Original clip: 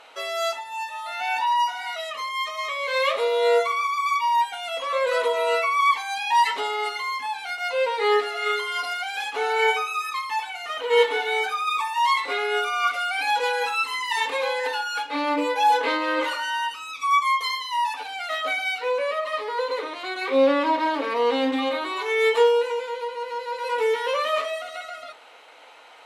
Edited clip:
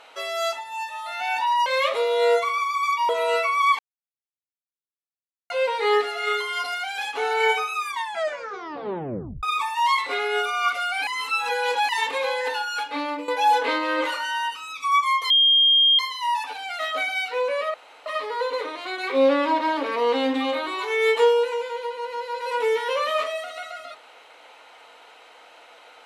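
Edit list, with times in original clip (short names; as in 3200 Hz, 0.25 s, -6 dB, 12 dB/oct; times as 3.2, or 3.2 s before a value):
1.66–2.89 cut
4.32–5.28 cut
5.98–7.69 mute
9.97 tape stop 1.65 s
13.26–14.08 reverse
15.09–15.47 fade out, to -13 dB
17.49 add tone 3220 Hz -13.5 dBFS 0.69 s
19.24 insert room tone 0.32 s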